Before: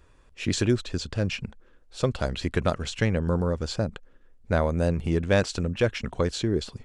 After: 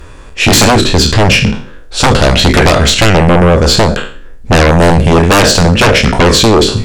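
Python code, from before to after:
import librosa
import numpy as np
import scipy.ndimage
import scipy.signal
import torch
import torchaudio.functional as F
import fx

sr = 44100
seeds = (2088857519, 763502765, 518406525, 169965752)

y = fx.spec_trails(x, sr, decay_s=0.43)
y = fx.fold_sine(y, sr, drive_db=16, ceiling_db=-6.5)
y = F.gain(torch.from_numpy(y), 4.0).numpy()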